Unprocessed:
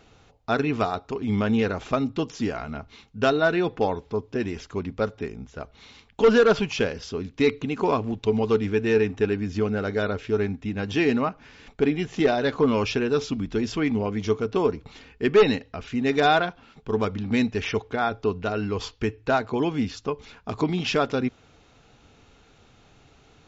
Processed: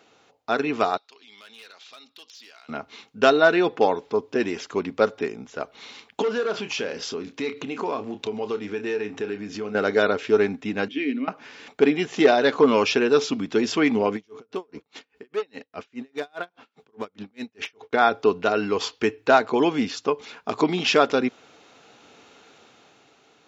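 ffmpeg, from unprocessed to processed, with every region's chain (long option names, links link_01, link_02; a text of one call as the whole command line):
ffmpeg -i in.wav -filter_complex "[0:a]asettb=1/sr,asplit=3[link_01][link_02][link_03];[link_01]atrim=end=0.974[link_04];[link_02]atrim=start=0.97:end=2.69,asetpts=PTS-STARTPTS,afade=type=in:duration=0.004:curve=qsin,afade=type=out:start_time=1.716:duration=0.004:curve=qsin,bandpass=frequency=4100:width_type=q:width=2.3,asoftclip=type=hard:threshold=-39dB,acompressor=threshold=-52dB:ratio=2.5:attack=3.2:release=140:knee=1:detection=peak[link_05];[link_03]atrim=start=2.686[link_06];[link_04][link_05]acrossfade=duration=0.004:curve1=hsin:curve2=qsin[link_07];[link_07][link_06]acrossfade=duration=0.004:curve1=qsin:curve2=hsin,asettb=1/sr,asplit=3[link_08][link_09][link_10];[link_08]atrim=end=6.224[link_11];[link_09]atrim=start=6.22:end=9.75,asetpts=PTS-STARTPTS,afade=type=in:duration=0.004:curve=qsin,afade=type=out:start_time=3.526:duration=0.004:curve=qsin,asplit=2[link_12][link_13];[link_13]adelay=29,volume=-10.5dB[link_14];[link_12][link_14]amix=inputs=2:normalize=0,atrim=end_sample=155673,acompressor=threshold=-33dB:ratio=3:attack=3.2:release=140:knee=1:detection=peak[link_15];[link_10]atrim=start=9.746[link_16];[link_11][link_15]acrossfade=duration=0.004:curve1=hsin:curve2=qsin[link_17];[link_17][link_16]acrossfade=duration=0.004:curve1=qsin:curve2=hsin,asettb=1/sr,asplit=3[link_18][link_19][link_20];[link_18]atrim=end=10.884[link_21];[link_19]atrim=start=10.88:end=11.28,asetpts=PTS-STARTPTS,afade=type=in:duration=0.004:curve=qsin,afade=type=out:start_time=0.396:duration=0.004:curve=qsin,asplit=3[link_22][link_23][link_24];[link_22]bandpass=frequency=270:width_type=q:width=8,volume=0dB[link_25];[link_23]bandpass=frequency=2290:width_type=q:width=8,volume=-6dB[link_26];[link_24]bandpass=frequency=3010:width_type=q:width=8,volume=-9dB[link_27];[link_25][link_26][link_27]amix=inputs=3:normalize=0,equalizer=frequency=890:width=1.8:gain=13.5[link_28];[link_20]atrim=start=11.276[link_29];[link_21][link_28]acrossfade=duration=0.004:curve1=hsin:curve2=qsin[link_30];[link_30][link_29]acrossfade=duration=0.004:curve1=qsin:curve2=hsin,asettb=1/sr,asplit=3[link_31][link_32][link_33];[link_31]atrim=end=14.164[link_34];[link_32]atrim=start=14.16:end=17.93,asetpts=PTS-STARTPTS,afade=type=in:duration=0.004:curve=qsin,afade=type=out:start_time=3.766:duration=0.004:curve=qsin,acompressor=threshold=-29dB:ratio=6:attack=3.2:release=140:knee=1:detection=peak,volume=25.5dB,asoftclip=hard,volume=-25.5dB,aeval=exprs='val(0)*pow(10,-38*(0.5-0.5*cos(2*PI*4.9*n/s))/20)':channel_layout=same[link_35];[link_33]atrim=start=17.926[link_36];[link_34][link_35]acrossfade=duration=0.004:curve1=hsin:curve2=qsin[link_37];[link_37][link_36]acrossfade=duration=0.004:curve1=qsin:curve2=hsin,highpass=290,dynaudnorm=framelen=160:gausssize=11:maxgain=7dB" out.wav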